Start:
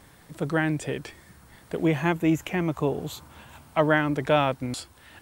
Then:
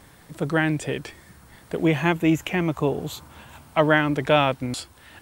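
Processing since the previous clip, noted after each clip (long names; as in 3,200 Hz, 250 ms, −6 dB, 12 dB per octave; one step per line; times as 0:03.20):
dynamic equaliser 2,900 Hz, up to +4 dB, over −41 dBFS, Q 1.4
level +2.5 dB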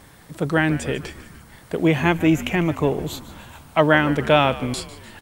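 echo with shifted repeats 149 ms, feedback 57%, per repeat −77 Hz, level −16 dB
level +2.5 dB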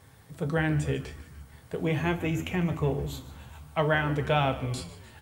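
flanger 0.46 Hz, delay 7.9 ms, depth 7.9 ms, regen +62%
on a send at −9 dB: convolution reverb RT60 0.50 s, pre-delay 3 ms
on the sum: level −5.5 dB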